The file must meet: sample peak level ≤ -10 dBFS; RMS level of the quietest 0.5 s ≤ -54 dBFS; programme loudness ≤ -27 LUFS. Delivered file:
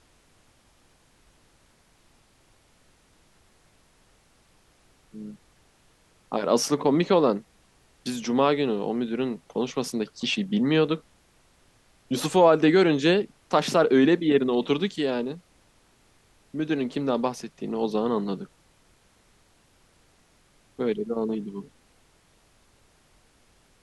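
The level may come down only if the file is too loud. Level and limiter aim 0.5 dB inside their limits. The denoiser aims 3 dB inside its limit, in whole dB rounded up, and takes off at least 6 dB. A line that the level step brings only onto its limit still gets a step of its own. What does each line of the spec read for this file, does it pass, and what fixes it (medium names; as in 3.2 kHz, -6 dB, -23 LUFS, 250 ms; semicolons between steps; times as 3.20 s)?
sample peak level -7.0 dBFS: fail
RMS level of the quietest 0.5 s -61 dBFS: pass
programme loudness -24.5 LUFS: fail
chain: trim -3 dB; peak limiter -10.5 dBFS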